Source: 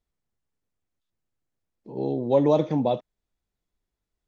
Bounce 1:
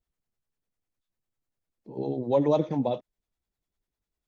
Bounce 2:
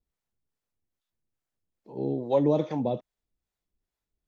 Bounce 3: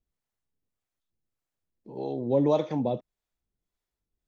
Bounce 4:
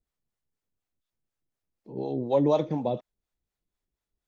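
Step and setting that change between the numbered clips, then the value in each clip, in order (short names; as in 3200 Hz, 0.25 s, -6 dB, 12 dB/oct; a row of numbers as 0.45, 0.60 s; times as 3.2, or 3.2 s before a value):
harmonic tremolo, rate: 10, 2.4, 1.7, 4.1 Hz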